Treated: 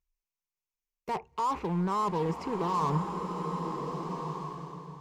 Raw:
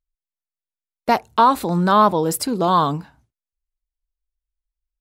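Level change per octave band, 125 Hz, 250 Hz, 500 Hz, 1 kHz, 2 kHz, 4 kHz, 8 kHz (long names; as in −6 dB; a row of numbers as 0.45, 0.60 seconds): −7.0, −10.5, −12.0, −12.5, −16.0, −17.0, −19.5 decibels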